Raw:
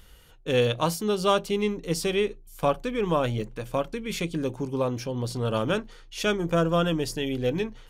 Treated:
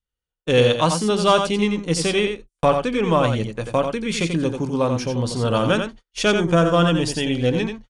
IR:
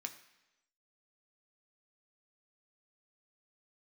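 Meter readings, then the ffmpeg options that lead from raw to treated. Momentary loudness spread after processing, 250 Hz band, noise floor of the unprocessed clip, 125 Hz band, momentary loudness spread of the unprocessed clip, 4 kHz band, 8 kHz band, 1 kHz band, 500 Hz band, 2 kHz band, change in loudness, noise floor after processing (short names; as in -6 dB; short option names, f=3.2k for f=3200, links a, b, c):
6 LU, +7.5 dB, -51 dBFS, +7.0 dB, 7 LU, +7.5 dB, +7.5 dB, +7.5 dB, +6.0 dB, +7.5 dB, +7.0 dB, under -85 dBFS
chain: -af "adynamicequalizer=threshold=0.01:dfrequency=410:dqfactor=3:tfrequency=410:tqfactor=3:attack=5:release=100:ratio=0.375:range=3.5:mode=cutabove:tftype=bell,acontrast=83,agate=range=-43dB:threshold=-31dB:ratio=16:detection=peak,aecho=1:1:88:0.473,aresample=22050,aresample=44100"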